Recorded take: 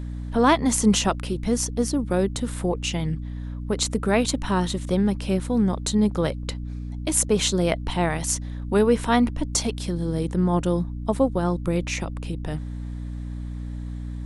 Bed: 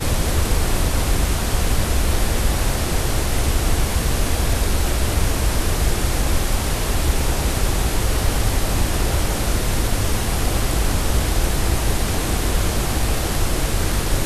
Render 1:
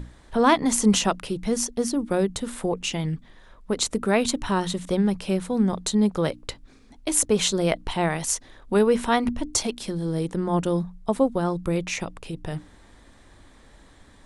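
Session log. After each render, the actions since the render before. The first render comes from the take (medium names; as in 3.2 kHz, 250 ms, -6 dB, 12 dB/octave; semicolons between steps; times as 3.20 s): hum notches 60/120/180/240/300 Hz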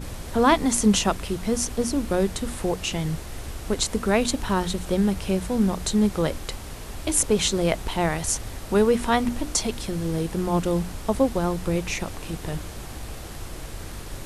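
add bed -16 dB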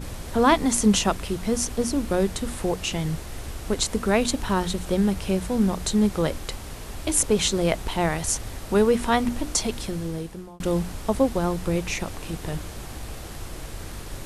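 9.83–10.60 s: fade out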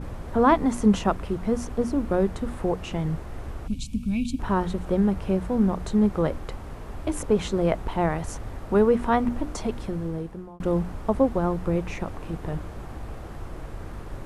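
3.68–4.40 s: time-frequency box 280–2200 Hz -27 dB; FFT filter 1.2 kHz 0 dB, 4.1 kHz -14 dB, 11 kHz -17 dB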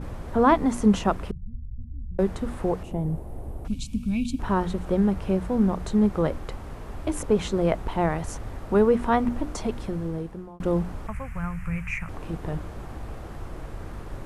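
1.31–2.19 s: inverse Chebyshev low-pass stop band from 740 Hz, stop band 80 dB; 2.83–3.65 s: high-order bell 2.8 kHz -15 dB 2.9 oct; 11.07–12.09 s: FFT filter 160 Hz 0 dB, 310 Hz -27 dB, 840 Hz -12 dB, 1.3 kHz -1 dB, 2.4 kHz +10 dB, 3.6 kHz -16 dB, 7.4 kHz 0 dB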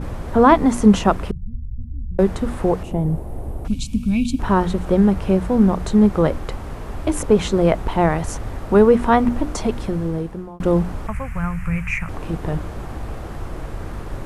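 trim +7 dB; peak limiter -1 dBFS, peak gain reduction 1.5 dB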